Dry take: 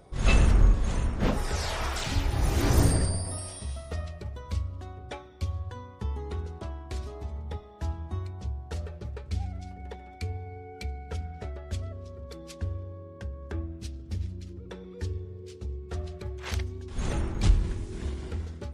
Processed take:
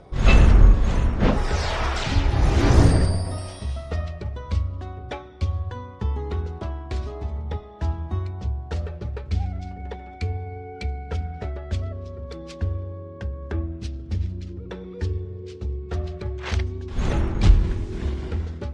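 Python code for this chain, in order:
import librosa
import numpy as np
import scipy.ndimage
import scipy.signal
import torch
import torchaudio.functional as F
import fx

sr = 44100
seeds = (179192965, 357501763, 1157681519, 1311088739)

y = fx.air_absorb(x, sr, metres=97.0)
y = y * 10.0 ** (7.0 / 20.0)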